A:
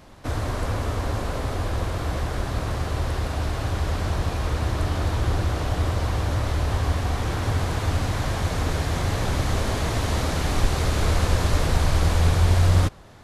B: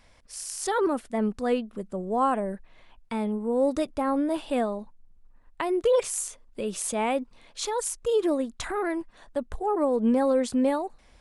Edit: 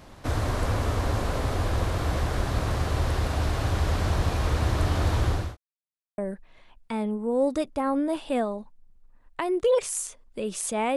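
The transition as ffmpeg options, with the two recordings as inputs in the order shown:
-filter_complex "[0:a]apad=whole_dur=10.96,atrim=end=10.96,asplit=2[a][b];[a]atrim=end=5.57,asetpts=PTS-STARTPTS,afade=t=out:st=5.12:d=0.45:c=qsin[c];[b]atrim=start=5.57:end=6.18,asetpts=PTS-STARTPTS,volume=0[d];[1:a]atrim=start=2.39:end=7.17,asetpts=PTS-STARTPTS,afade=t=in:d=0.004:c=hsin[e];[c][d][e]concat=n=3:v=0:a=1"

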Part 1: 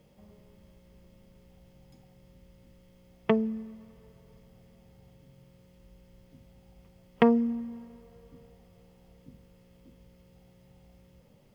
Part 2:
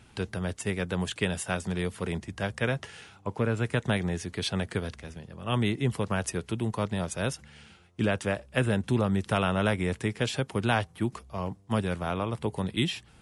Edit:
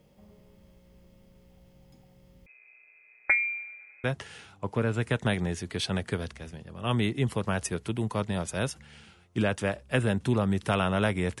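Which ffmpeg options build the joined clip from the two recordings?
-filter_complex "[0:a]asettb=1/sr,asplit=3[a][b][c];[a]atrim=end=2.464[d];[b]atrim=start=2.46:end=4.04,asetpts=PTS-STARTPTS,afade=t=in:d=0.004:c=qsin,afade=t=out:st=1.576:d=0.004:c=qsin,lowpass=f=2.2k:t=q:w=0.5098,lowpass=f=2.2k:t=q:w=0.6013,lowpass=f=2.2k:t=q:w=0.9,lowpass=f=2.2k:t=q:w=2.563,afreqshift=-2600[e];[c]atrim=start=4.036[f];[d][e]acrossfade=d=0.004:c1=hsin:c2=qsin[g];[g][f]acrossfade=d=0.004:c1=qsin:c2=hsin,apad=whole_dur=11.4,atrim=end=11.4,atrim=end=4.042[h];[1:a]atrim=start=2.668:end=10.03[i];[h][i]acrossfade=d=0.004:c1=hsin:c2=hsin"

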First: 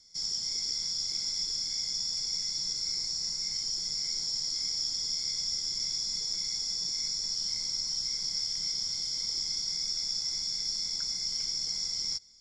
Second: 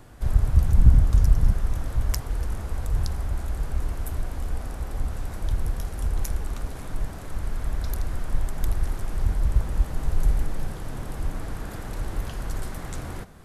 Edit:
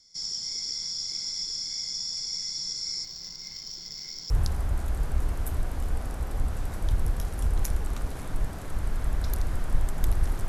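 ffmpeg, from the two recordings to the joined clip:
-filter_complex "[0:a]asettb=1/sr,asplit=3[a][b][c];[a]atrim=end=3.044[d];[b]atrim=start=3.04:end=4.3,asetpts=PTS-STARTPTS,afade=t=in:d=0.004:c=qsin,afade=t=out:st=1.256:d=0.004:c=qsin,adynamicsmooth=sensitivity=3:basefreq=2.9k[e];[c]atrim=start=4.296[f];[d][e]acrossfade=d=0.004:c1=hsin:c2=qsin[g];[g][f]acrossfade=d=0.004:c1=qsin:c2=hsin,apad=whole_dur=10.48,atrim=end=10.48,atrim=end=4.302[h];[1:a]atrim=start=2.898:end=9.08[i];[h][i]acrossfade=d=0.004:c1=hsin:c2=hsin"

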